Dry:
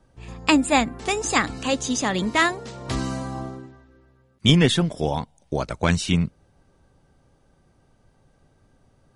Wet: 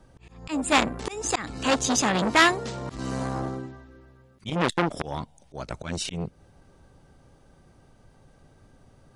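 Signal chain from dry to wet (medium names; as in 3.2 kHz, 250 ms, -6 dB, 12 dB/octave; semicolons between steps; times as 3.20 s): slow attack 335 ms; transformer saturation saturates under 2.4 kHz; trim +4.5 dB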